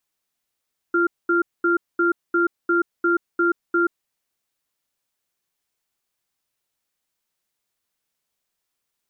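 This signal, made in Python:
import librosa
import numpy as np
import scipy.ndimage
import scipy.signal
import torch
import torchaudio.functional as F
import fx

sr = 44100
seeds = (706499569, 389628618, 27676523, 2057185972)

y = fx.cadence(sr, length_s=3.07, low_hz=343.0, high_hz=1390.0, on_s=0.13, off_s=0.22, level_db=-18.5)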